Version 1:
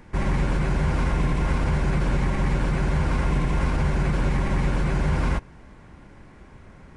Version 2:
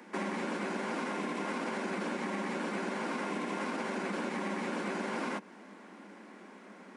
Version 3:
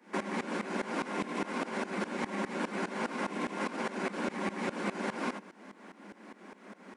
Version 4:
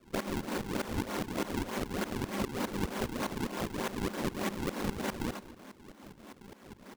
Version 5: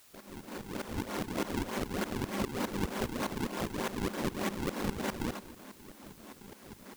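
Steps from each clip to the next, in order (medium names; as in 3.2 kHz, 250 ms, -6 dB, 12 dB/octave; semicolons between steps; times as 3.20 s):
steep high-pass 190 Hz 96 dB/octave; compression, threshold -32 dBFS, peak gain reduction 7 dB
tremolo saw up 4.9 Hz, depth 90%; trim +4.5 dB
decimation with a swept rate 42×, swing 160% 3.3 Hz; echo from a far wall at 41 m, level -17 dB
fade-in on the opening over 1.32 s; in parallel at -9 dB: word length cut 8-bit, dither triangular; on the sum: trim -2.5 dB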